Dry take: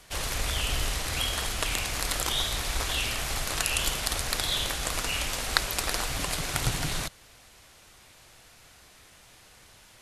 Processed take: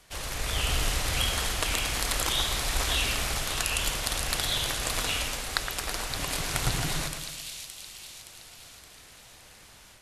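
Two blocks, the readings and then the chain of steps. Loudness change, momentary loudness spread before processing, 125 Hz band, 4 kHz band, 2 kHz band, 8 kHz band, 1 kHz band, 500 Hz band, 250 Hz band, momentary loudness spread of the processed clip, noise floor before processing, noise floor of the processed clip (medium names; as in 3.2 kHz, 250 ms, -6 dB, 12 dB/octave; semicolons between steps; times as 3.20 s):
0.0 dB, 3 LU, +0.5 dB, +0.5 dB, +0.5 dB, +0.5 dB, +0.5 dB, +0.5 dB, +0.5 dB, 16 LU, -55 dBFS, -52 dBFS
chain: two-band feedback delay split 2.6 kHz, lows 115 ms, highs 569 ms, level -7 dB; level rider gain up to 5.5 dB; trim -4.5 dB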